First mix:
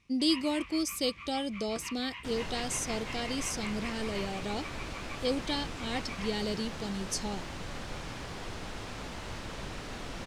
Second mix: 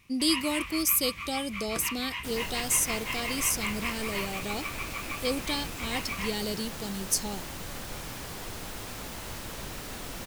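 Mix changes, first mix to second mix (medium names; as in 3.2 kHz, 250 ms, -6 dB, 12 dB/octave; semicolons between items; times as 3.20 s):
first sound +7.5 dB; master: remove distance through air 87 m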